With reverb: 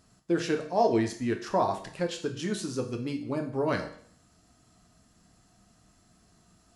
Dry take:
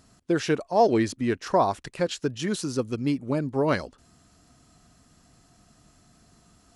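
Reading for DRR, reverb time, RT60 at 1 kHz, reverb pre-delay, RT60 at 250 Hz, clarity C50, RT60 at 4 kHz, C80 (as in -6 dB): 3.5 dB, 0.55 s, 0.55 s, 6 ms, 0.55 s, 9.5 dB, 0.55 s, 13.0 dB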